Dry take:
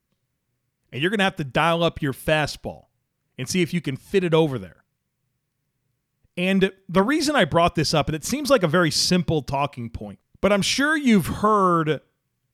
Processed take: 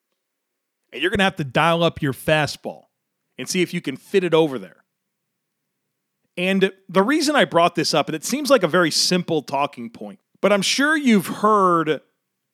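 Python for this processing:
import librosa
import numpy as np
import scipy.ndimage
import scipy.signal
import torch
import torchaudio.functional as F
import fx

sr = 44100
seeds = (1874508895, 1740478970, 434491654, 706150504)

y = fx.highpass(x, sr, hz=fx.steps((0.0, 290.0), (1.15, 71.0), (2.56, 190.0)), slope=24)
y = F.gain(torch.from_numpy(y), 2.5).numpy()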